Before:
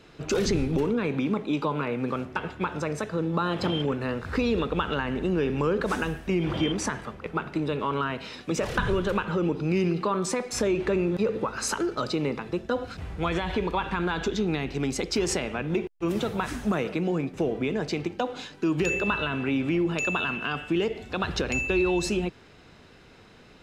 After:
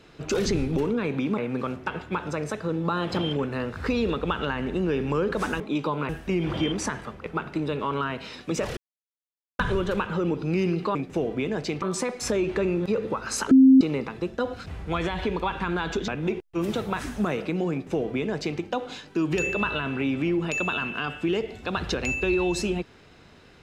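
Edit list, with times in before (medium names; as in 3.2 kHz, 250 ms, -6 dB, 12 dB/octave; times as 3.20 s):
1.38–1.87 s: move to 6.09 s
8.77 s: insert silence 0.82 s
11.82–12.12 s: bleep 264 Hz -10 dBFS
14.39–15.55 s: delete
17.19–18.06 s: copy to 10.13 s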